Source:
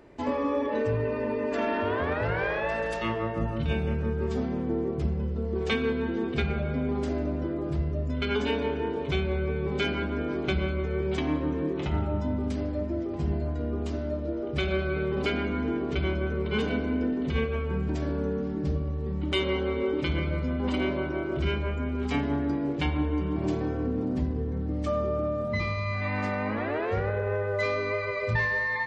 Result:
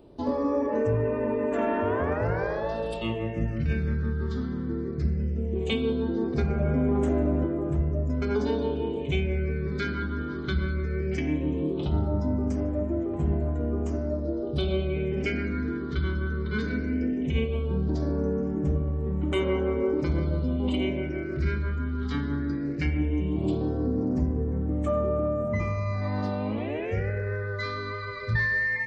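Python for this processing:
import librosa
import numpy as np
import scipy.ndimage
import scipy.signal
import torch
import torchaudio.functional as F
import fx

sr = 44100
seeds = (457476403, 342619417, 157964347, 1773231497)

y = fx.phaser_stages(x, sr, stages=6, low_hz=670.0, high_hz=4600.0, hz=0.17, feedback_pct=30)
y = fx.env_flatten(y, sr, amount_pct=50, at=(6.59, 7.44), fade=0.02)
y = y * librosa.db_to_amplitude(1.0)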